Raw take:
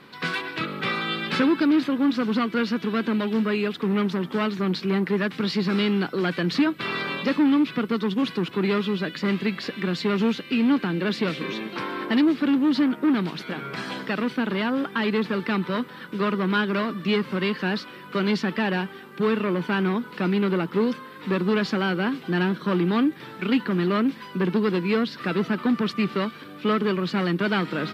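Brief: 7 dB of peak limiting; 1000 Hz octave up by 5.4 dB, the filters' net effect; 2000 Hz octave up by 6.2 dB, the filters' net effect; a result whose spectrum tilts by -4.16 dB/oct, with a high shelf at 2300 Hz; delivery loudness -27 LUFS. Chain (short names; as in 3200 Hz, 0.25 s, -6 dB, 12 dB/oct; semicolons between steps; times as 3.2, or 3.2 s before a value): bell 1000 Hz +5 dB; bell 2000 Hz +9 dB; high shelf 2300 Hz -5.5 dB; gain -2 dB; limiter -16 dBFS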